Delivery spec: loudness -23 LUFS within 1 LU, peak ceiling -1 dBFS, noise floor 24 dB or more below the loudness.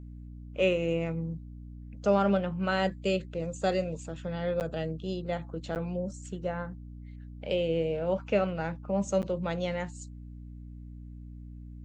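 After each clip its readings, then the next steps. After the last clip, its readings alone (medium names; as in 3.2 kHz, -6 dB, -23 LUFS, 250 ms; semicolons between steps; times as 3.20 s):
dropouts 3; longest dropout 9.0 ms; hum 60 Hz; highest harmonic 300 Hz; hum level -42 dBFS; loudness -31.0 LUFS; peak level -13.0 dBFS; loudness target -23.0 LUFS
-> interpolate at 4.60/5.75/9.22 s, 9 ms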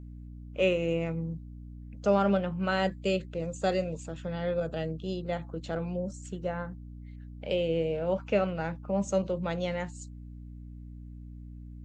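dropouts 0; hum 60 Hz; highest harmonic 300 Hz; hum level -42 dBFS
-> hum notches 60/120/180/240/300 Hz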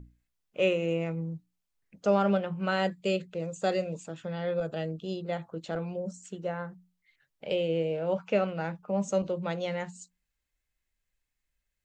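hum not found; loudness -31.0 LUFS; peak level -13.0 dBFS; loudness target -23.0 LUFS
-> trim +8 dB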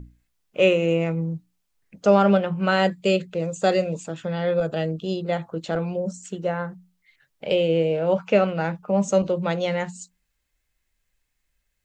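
loudness -23.0 LUFS; peak level -5.0 dBFS; noise floor -75 dBFS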